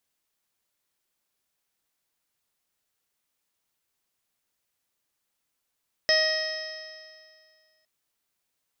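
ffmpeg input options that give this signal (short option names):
-f lavfi -i "aevalsrc='0.0708*pow(10,-3*t/2.04)*sin(2*PI*626.34*t)+0.01*pow(10,-3*t/2.04)*sin(2*PI*1254.75*t)+0.0794*pow(10,-3*t/2.04)*sin(2*PI*1887.27*t)+0.0141*pow(10,-3*t/2.04)*sin(2*PI*2525.94*t)+0.0188*pow(10,-3*t/2.04)*sin(2*PI*3172.75*t)+0.0158*pow(10,-3*t/2.04)*sin(2*PI*3829.65*t)+0.0133*pow(10,-3*t/2.04)*sin(2*PI*4498.55*t)+0.0944*pow(10,-3*t/2.04)*sin(2*PI*5181.28*t)+0.0133*pow(10,-3*t/2.04)*sin(2*PI*5879.64*t)':d=1.76:s=44100"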